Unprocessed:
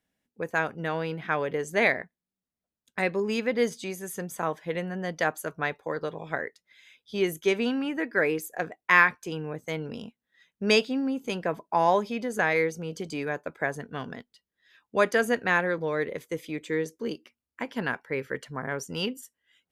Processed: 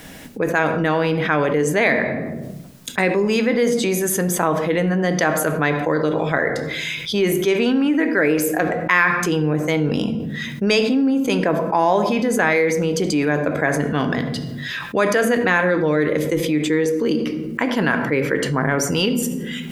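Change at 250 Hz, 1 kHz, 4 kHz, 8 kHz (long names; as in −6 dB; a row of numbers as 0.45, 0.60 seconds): +13.0, +7.0, +9.5, +15.0 decibels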